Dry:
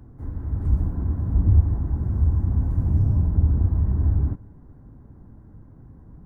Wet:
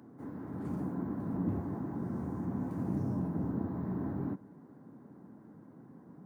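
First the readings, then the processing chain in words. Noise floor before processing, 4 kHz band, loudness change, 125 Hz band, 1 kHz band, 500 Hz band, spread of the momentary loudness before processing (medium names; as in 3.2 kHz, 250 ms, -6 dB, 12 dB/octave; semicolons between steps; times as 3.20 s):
-48 dBFS, no reading, -14.0 dB, -18.0 dB, 0.0 dB, 0.0 dB, 9 LU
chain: high-pass 180 Hz 24 dB/octave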